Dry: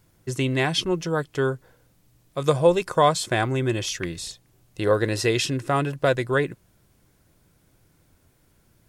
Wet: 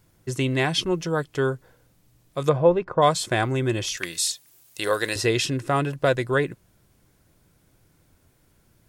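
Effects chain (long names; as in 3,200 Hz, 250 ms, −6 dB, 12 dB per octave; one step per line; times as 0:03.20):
0:02.48–0:03.01: low-pass filter 2,500 Hz → 1,100 Hz 12 dB per octave
0:03.97–0:05.16: spectral tilt +4 dB per octave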